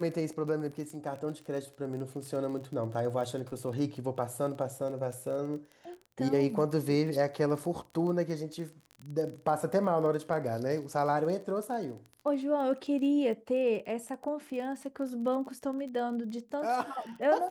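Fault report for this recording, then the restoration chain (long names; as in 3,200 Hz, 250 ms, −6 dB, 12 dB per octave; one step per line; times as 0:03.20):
surface crackle 27 per second −38 dBFS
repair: click removal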